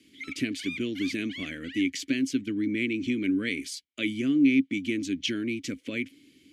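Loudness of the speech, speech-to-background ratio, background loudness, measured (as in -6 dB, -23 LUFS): -29.0 LUFS, 11.0 dB, -40.0 LUFS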